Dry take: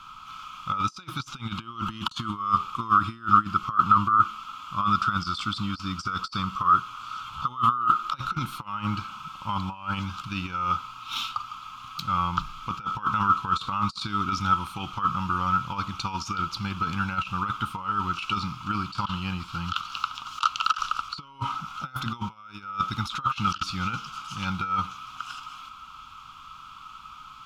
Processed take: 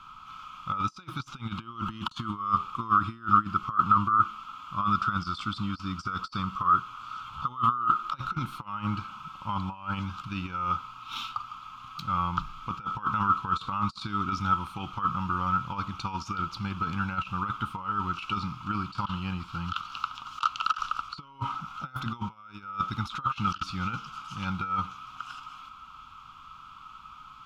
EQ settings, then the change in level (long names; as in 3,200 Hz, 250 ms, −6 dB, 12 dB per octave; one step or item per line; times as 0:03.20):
high-shelf EQ 2,800 Hz −8 dB
−1.5 dB